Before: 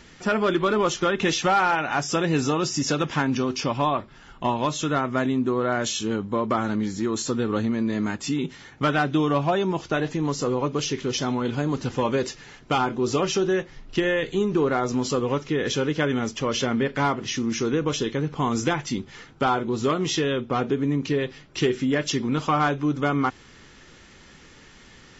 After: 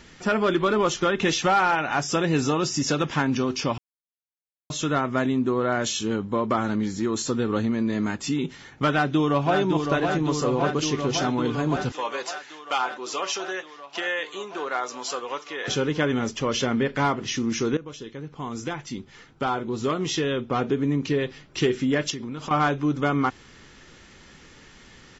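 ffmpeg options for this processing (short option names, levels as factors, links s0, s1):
-filter_complex "[0:a]asplit=2[s0][s1];[s1]afade=t=in:st=8.9:d=0.01,afade=t=out:st=9.58:d=0.01,aecho=0:1:560|1120|1680|2240|2800|3360|3920|4480|5040|5600|6160|6720:0.562341|0.47799|0.406292|0.345348|0.293546|0.249514|0.212087|0.180274|0.153233|0.130248|0.110711|0.094104[s2];[s0][s2]amix=inputs=2:normalize=0,asettb=1/sr,asplit=3[s3][s4][s5];[s3]atrim=end=11.924[s6];[s4]atrim=start=11.92:end=15.68,asetpts=PTS-STARTPTS,afade=t=in:d=0.004:c=qsin,afade=t=out:st=3.756:d=0.004:c=qsin,highpass=750[s7];[s5]atrim=start=15.676[s8];[s6][s7]acrossfade=d=0.004:c1=hsin:c2=qsin[s9];[s9][s8]acrossfade=d=0.004:c1=qsin:c2=hsin,asettb=1/sr,asplit=3[s10][s11][s12];[s10]atrim=end=22.104[s13];[s11]atrim=start=22.1:end=22.51,asetpts=PTS-STARTPTS,afade=t=in:d=0.004:c=qsin,afade=t=out:st=0.406:d=0.004:c=qsin,acompressor=threshold=0.0355:ratio=10:attack=3.2:release=140:knee=1:detection=peak[s14];[s12]atrim=start=22.506[s15];[s13][s14]acrossfade=d=0.004:c1=hsin:c2=qsin[s16];[s16][s15]acrossfade=d=0.004:c1=qsin:c2=hsin,asplit=4[s17][s18][s19][s20];[s17]atrim=end=3.78,asetpts=PTS-STARTPTS,afade=t=out:st=3.776:d=0.004:c=hsin[s21];[s18]atrim=start=3.78:end=4.7,asetpts=PTS-STARTPTS,volume=0[s22];[s19]atrim=start=4.7:end=17.77,asetpts=PTS-STARTPTS,afade=t=in:d=0.004:c=hsin,afade=t=out:st=13.066:d=0.004:c=hsin:silence=0.16788[s23];[s20]atrim=start=17.77,asetpts=PTS-STARTPTS,afade=t=in:d=2.96:silence=0.16788[s24];[s21][s22][s23][s24]concat=n=4:v=0:a=1"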